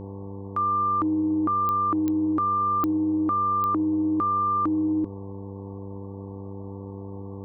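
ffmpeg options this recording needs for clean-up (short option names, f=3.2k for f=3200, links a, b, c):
-af "adeclick=t=4,bandreject=f=98.4:t=h:w=4,bandreject=f=196.8:t=h:w=4,bandreject=f=295.2:t=h:w=4,bandreject=f=393.6:t=h:w=4,bandreject=f=492:t=h:w=4,bandreject=f=890:w=30,afwtdn=0.011"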